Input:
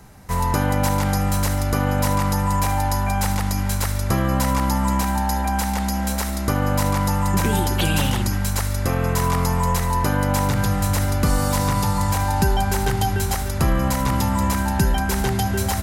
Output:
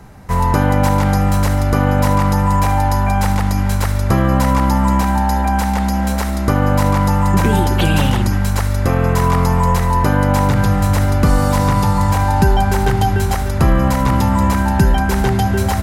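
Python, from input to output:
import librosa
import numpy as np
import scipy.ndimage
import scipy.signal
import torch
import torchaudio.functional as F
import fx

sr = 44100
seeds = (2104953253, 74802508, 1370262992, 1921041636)

y = fx.high_shelf(x, sr, hz=3400.0, db=-9.5)
y = y * librosa.db_to_amplitude(6.5)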